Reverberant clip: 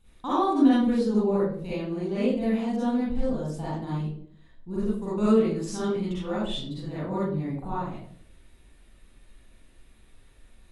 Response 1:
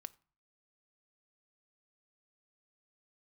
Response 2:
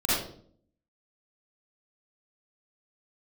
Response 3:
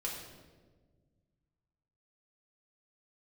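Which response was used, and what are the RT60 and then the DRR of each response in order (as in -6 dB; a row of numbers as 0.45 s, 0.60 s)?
2; 0.40 s, 0.55 s, 1.5 s; 13.0 dB, -12.0 dB, -3.0 dB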